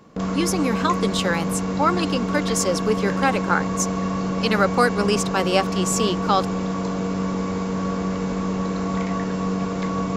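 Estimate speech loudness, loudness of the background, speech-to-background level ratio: -23.0 LUFS, -25.0 LUFS, 2.0 dB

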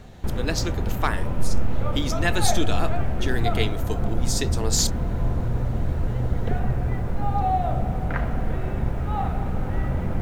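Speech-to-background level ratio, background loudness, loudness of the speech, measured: -1.5 dB, -27.0 LUFS, -28.5 LUFS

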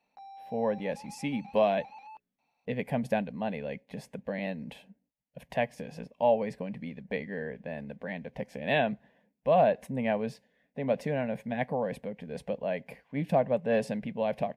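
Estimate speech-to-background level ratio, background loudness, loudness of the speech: 17.5 dB, -49.0 LUFS, -31.5 LUFS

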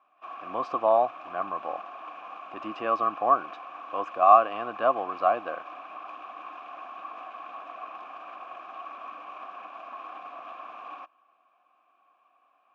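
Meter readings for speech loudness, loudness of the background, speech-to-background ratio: -25.0 LUFS, -41.5 LUFS, 16.5 dB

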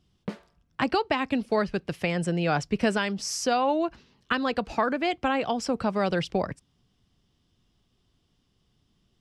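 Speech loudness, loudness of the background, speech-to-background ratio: -27.0 LUFS, -41.0 LUFS, 14.0 dB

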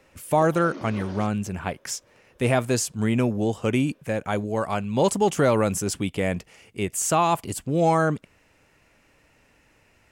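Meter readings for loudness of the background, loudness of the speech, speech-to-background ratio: -41.5 LUFS, -24.5 LUFS, 17.0 dB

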